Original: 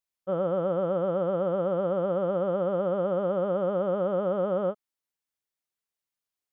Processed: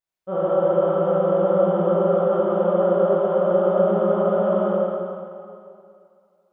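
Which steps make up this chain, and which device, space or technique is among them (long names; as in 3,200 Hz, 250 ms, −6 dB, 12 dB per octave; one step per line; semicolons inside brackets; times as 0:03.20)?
swimming-pool hall (convolution reverb RT60 2.4 s, pre-delay 19 ms, DRR −8 dB; high-shelf EQ 3,100 Hz −7.5 dB)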